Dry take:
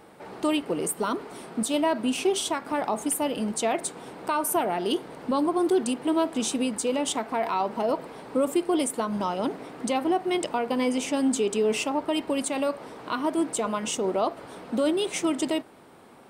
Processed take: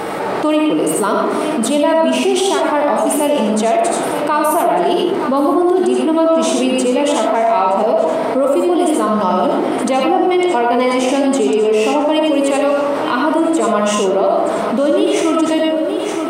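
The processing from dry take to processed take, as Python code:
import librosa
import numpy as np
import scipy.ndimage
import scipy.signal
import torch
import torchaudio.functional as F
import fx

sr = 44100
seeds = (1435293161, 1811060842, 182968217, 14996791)

y = fx.highpass(x, sr, hz=720.0, slope=6)
y = fx.high_shelf(y, sr, hz=7900.0, db=4.0)
y = fx.hpss(y, sr, part='harmonic', gain_db=7)
y = fx.tilt_eq(y, sr, slope=-2.5)
y = y + 10.0 ** (-17.0 / 20.0) * np.pad(y, (int(923 * sr / 1000.0), 0))[:len(y)]
y = fx.rev_freeverb(y, sr, rt60_s=0.68, hf_ratio=0.5, predelay_ms=40, drr_db=-0.5)
y = fx.env_flatten(y, sr, amount_pct=70)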